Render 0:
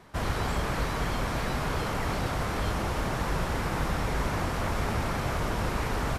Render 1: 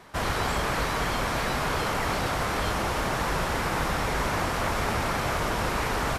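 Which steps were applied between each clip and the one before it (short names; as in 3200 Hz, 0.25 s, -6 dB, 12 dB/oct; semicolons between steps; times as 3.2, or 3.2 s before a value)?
low shelf 330 Hz -7.5 dB; gain +5.5 dB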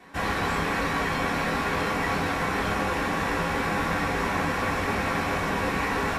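reverb RT60 0.30 s, pre-delay 3 ms, DRR -6 dB; gain -7 dB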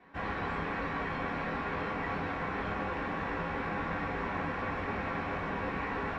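LPF 2600 Hz 12 dB/oct; gain -8 dB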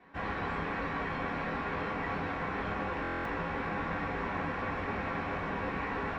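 stuck buffer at 3.02, samples 1024, times 9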